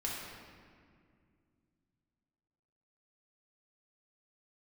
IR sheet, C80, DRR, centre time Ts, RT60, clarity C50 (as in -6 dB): 1.5 dB, -5.0 dB, 106 ms, 2.2 s, -1.0 dB